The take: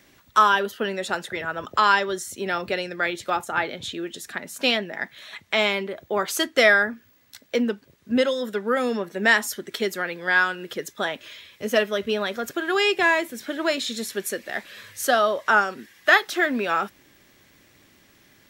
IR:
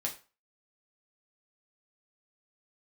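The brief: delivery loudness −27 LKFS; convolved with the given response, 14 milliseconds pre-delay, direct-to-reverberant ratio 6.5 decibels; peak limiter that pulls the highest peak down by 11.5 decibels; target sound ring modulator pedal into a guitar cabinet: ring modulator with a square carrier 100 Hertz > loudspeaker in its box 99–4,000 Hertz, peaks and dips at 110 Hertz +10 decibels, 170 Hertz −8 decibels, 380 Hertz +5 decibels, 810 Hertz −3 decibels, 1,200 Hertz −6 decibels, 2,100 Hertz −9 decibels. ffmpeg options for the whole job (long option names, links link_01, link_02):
-filter_complex "[0:a]alimiter=limit=-15dB:level=0:latency=1,asplit=2[link_01][link_02];[1:a]atrim=start_sample=2205,adelay=14[link_03];[link_02][link_03]afir=irnorm=-1:irlink=0,volume=-9dB[link_04];[link_01][link_04]amix=inputs=2:normalize=0,aeval=exprs='val(0)*sgn(sin(2*PI*100*n/s))':channel_layout=same,highpass=99,equalizer=frequency=110:width_type=q:width=4:gain=10,equalizer=frequency=170:width_type=q:width=4:gain=-8,equalizer=frequency=380:width_type=q:width=4:gain=5,equalizer=frequency=810:width_type=q:width=4:gain=-3,equalizer=frequency=1200:width_type=q:width=4:gain=-6,equalizer=frequency=2100:width_type=q:width=4:gain=-9,lowpass=frequency=4000:width=0.5412,lowpass=frequency=4000:width=1.3066,volume=1dB"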